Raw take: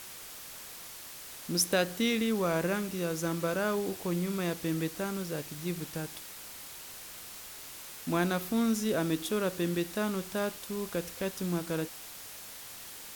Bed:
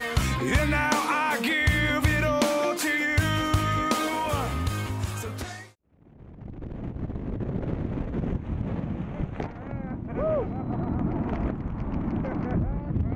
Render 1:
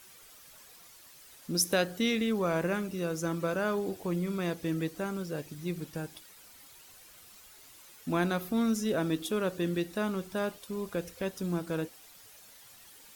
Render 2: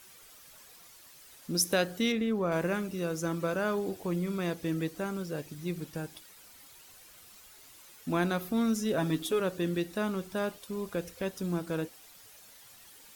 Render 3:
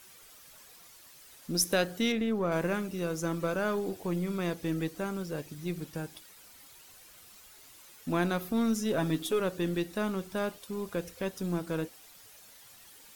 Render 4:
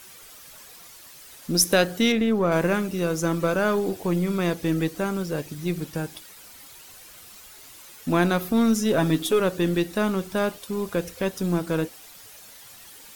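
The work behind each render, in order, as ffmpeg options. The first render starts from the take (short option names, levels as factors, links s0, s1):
-af "afftdn=nr=11:nf=-46"
-filter_complex "[0:a]asettb=1/sr,asplit=3[s0][s1][s2];[s0]atrim=end=2.124[s3];[s1]atrim=start=2.12:end=2.52,asetpts=PTS-STARTPTS,afade=t=in:d=0.004:c=qsin,afade=t=out:st=0.396:d=0.004:c=qsin,highshelf=f=2500:g=-10.5[s4];[s2]atrim=start=2.516[s5];[s3][s4]acrossfade=d=0.004:c1=hsin:c2=qsin[s6];[s6][s5]acrossfade=d=0.004:c1=qsin:c2=hsin,asettb=1/sr,asplit=3[s7][s8][s9];[s7]atrim=end=8.974[s10];[s8]atrim=start=8.97:end=9.4,asetpts=PTS-STARTPTS,afade=t=in:d=0.004:c=qsin,afade=t=out:st=0.426:d=0.004:c=qsin,aecho=1:1:7.2:0.65,atrim=end_sample=18963[s11];[s9]atrim=start=9.396[s12];[s10][s11]acrossfade=d=0.004:c1=hsin:c2=qsin[s13];[s13][s12]acrossfade=d=0.004:c1=qsin:c2=hsin"
-af "aeval=exprs='0.188*(cos(1*acos(clip(val(0)/0.188,-1,1)))-cos(1*PI/2))+0.00376*(cos(8*acos(clip(val(0)/0.188,-1,1)))-cos(8*PI/2))':c=same"
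-af "volume=2.51"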